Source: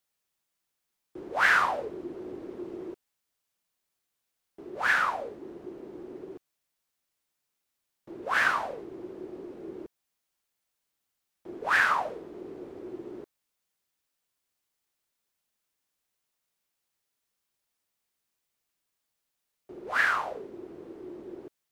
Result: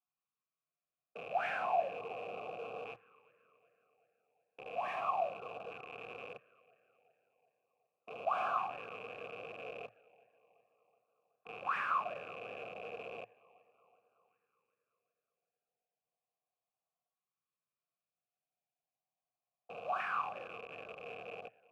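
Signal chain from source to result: rattling part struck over -52 dBFS, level -27 dBFS; frequency shift +110 Hz; bell 4300 Hz -12.5 dB 1.9 oct; on a send: darkening echo 0.374 s, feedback 58%, low-pass 4600 Hz, level -20.5 dB; on the sum: LFO notch saw up 0.35 Hz 600–2000 Hz; resonant low shelf 210 Hz +13.5 dB, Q 1.5; in parallel at -5 dB: Schmitt trigger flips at -43.5 dBFS; on the sum: vowel filter a; gain +8 dB

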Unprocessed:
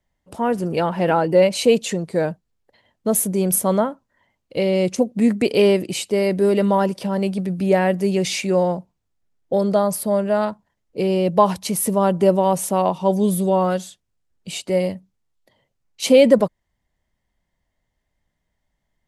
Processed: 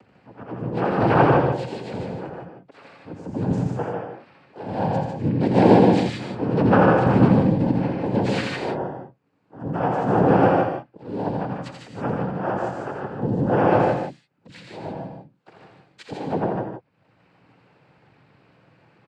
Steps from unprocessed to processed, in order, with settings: LPF 1800 Hz 12 dB/oct; in parallel at +2.5 dB: compressor 12:1, threshold -23 dBFS, peak gain reduction 16 dB; on the sum: auto swell 0.663 s; upward compressor, threshold -34 dBFS; phaser 0.83 Hz, delay 4.9 ms, feedback 41%; harmoniser -7 st -1 dB, +7 st -8 dB; noise vocoder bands 8; on a send: loudspeakers at several distances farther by 29 m -5 dB, 51 m -5 dB; on the sum: non-linear reverb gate 0.19 s rising, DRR 4 dB; gain -6 dB

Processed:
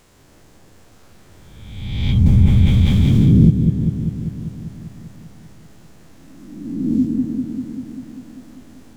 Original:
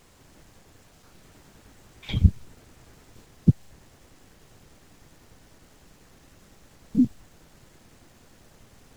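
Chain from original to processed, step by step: spectral swells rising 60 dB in 1.33 s; repeats that get brighter 0.197 s, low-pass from 750 Hz, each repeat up 1 oct, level -3 dB; 2.26–3.5 fast leveller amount 70%

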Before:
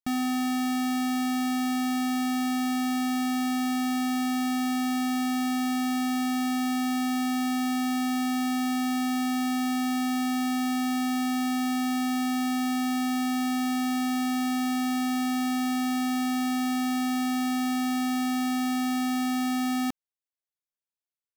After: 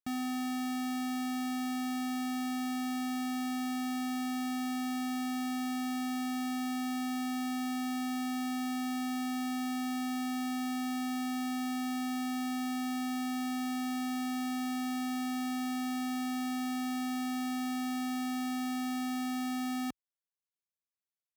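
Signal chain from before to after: HPF 43 Hz; gain -7.5 dB

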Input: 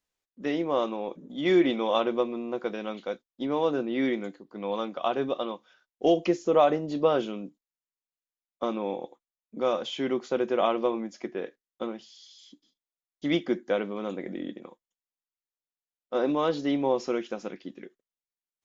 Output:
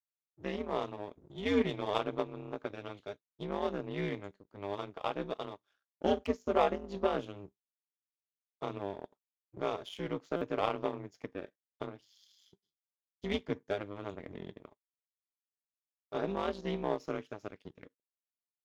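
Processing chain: in parallel at +0.5 dB: compressor, threshold -38 dBFS, peak gain reduction 20.5 dB; on the sum: power-law curve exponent 1.4; ring modulator 100 Hz; stuck buffer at 10.36, samples 256, times 8; gain -3 dB

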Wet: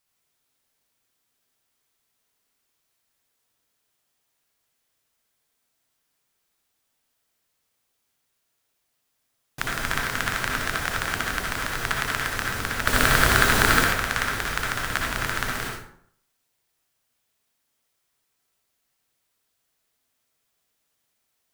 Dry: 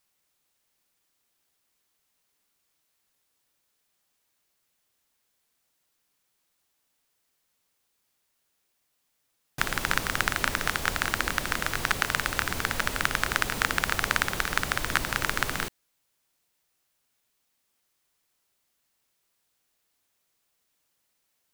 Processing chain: 12.87–13.84 sample leveller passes 3; reverb RT60 0.65 s, pre-delay 53 ms, DRR -1 dB; gain -2.5 dB

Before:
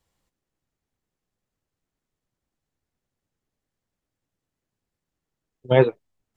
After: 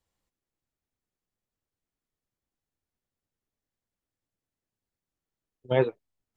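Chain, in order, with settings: bell 150 Hz -3 dB 0.42 oct; gain -7 dB

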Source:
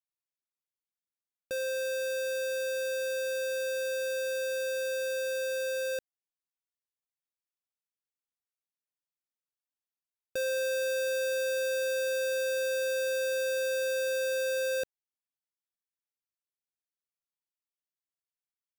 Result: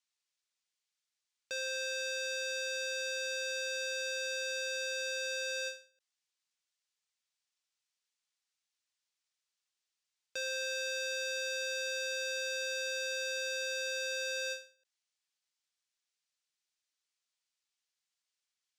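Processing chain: weighting filter ITU-R 468; soft clip -28 dBFS, distortion -9 dB; air absorption 56 m; ending taper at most 160 dB/s; gain +3 dB

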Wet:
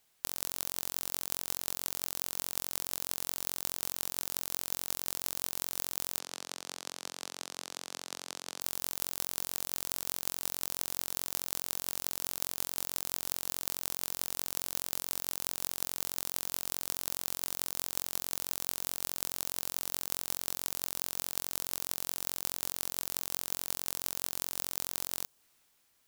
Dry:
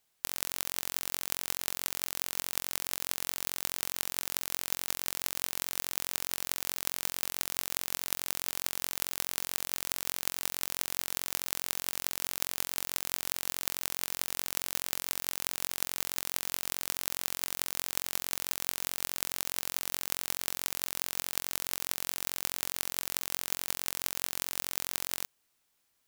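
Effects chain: dynamic EQ 2100 Hz, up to -7 dB, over -56 dBFS, Q 1.1; transient shaper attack -6 dB, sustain +2 dB; 6.19–8.61 BPF 200–6300 Hz; gain +4 dB

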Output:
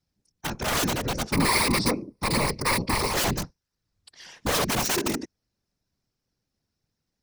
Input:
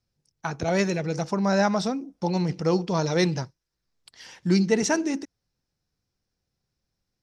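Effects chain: wrapped overs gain 20 dB; 1.32–3.13 ripple EQ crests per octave 0.91, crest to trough 13 dB; whisperiser

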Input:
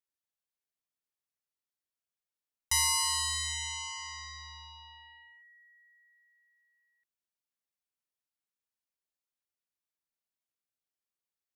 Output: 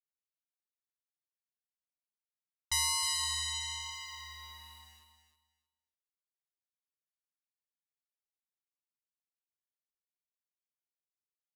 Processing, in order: low-pass opened by the level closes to 2600 Hz, open at -32 dBFS; bell 3700 Hz +9 dB 0.2 oct; sample gate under -50 dBFS; vibrato 1.1 Hz 12 cents; on a send: feedback echo 0.312 s, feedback 20%, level -9 dB; on the sum: gain -4 dB

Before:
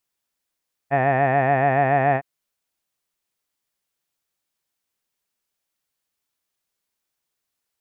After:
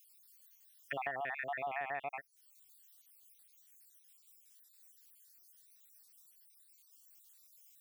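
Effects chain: random spectral dropouts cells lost 59%; differentiator; compressor 6:1, threshold -56 dBFS, peak gain reduction 20.5 dB; gain +18 dB

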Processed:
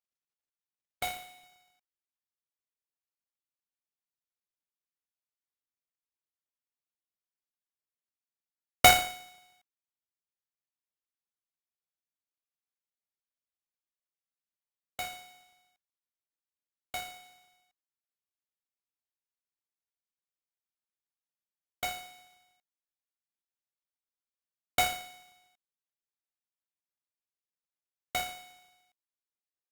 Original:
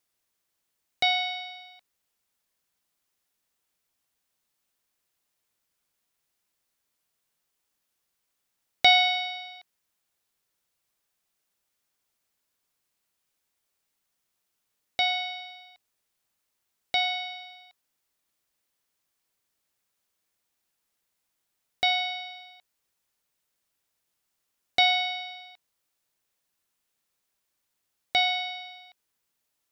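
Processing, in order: half-waves squared off; added harmonics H 3 -10 dB, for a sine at -5.5 dBFS; gain +1 dB; Opus 24 kbps 48000 Hz

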